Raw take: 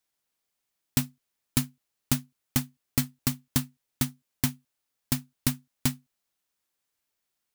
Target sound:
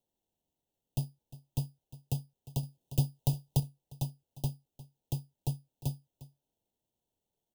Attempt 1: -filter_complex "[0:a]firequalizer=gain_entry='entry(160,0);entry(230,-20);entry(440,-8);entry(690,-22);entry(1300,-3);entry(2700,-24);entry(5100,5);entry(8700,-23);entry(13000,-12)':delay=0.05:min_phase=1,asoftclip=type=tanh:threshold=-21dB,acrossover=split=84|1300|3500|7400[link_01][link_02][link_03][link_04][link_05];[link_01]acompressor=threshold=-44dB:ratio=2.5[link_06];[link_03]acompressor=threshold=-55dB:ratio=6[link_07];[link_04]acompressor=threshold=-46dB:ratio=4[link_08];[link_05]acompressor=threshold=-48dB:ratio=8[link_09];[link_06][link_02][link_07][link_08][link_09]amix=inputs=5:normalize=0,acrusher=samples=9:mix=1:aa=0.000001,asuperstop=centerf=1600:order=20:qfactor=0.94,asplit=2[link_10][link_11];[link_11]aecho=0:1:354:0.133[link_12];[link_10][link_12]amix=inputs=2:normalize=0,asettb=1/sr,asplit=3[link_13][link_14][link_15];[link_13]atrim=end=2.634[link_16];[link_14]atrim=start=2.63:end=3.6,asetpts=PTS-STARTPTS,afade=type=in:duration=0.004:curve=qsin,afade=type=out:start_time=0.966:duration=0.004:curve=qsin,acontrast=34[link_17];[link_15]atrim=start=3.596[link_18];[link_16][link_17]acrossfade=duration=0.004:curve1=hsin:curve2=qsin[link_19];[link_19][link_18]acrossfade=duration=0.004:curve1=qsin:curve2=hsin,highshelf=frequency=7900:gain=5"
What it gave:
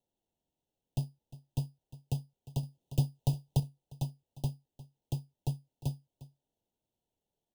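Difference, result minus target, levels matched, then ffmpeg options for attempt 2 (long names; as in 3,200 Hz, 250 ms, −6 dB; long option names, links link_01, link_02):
8,000 Hz band −4.5 dB
-filter_complex "[0:a]firequalizer=gain_entry='entry(160,0);entry(230,-20);entry(440,-8);entry(690,-22);entry(1300,-3);entry(2700,-24);entry(5100,5);entry(8700,-23);entry(13000,-12)':delay=0.05:min_phase=1,asoftclip=type=tanh:threshold=-21dB,acrossover=split=84|1300|3500|7400[link_01][link_02][link_03][link_04][link_05];[link_01]acompressor=threshold=-44dB:ratio=2.5[link_06];[link_03]acompressor=threshold=-55dB:ratio=6[link_07];[link_04]acompressor=threshold=-46dB:ratio=4[link_08];[link_05]acompressor=threshold=-48dB:ratio=8[link_09];[link_06][link_02][link_07][link_08][link_09]amix=inputs=5:normalize=0,acrusher=samples=9:mix=1:aa=0.000001,asuperstop=centerf=1600:order=20:qfactor=0.94,asplit=2[link_10][link_11];[link_11]aecho=0:1:354:0.133[link_12];[link_10][link_12]amix=inputs=2:normalize=0,asettb=1/sr,asplit=3[link_13][link_14][link_15];[link_13]atrim=end=2.634[link_16];[link_14]atrim=start=2.63:end=3.6,asetpts=PTS-STARTPTS,afade=type=in:duration=0.004:curve=qsin,afade=type=out:start_time=0.966:duration=0.004:curve=qsin,acontrast=34[link_17];[link_15]atrim=start=3.596[link_18];[link_16][link_17]acrossfade=duration=0.004:curve1=hsin:curve2=qsin[link_19];[link_19][link_18]acrossfade=duration=0.004:curve1=qsin:curve2=hsin,highshelf=frequency=7900:gain=14"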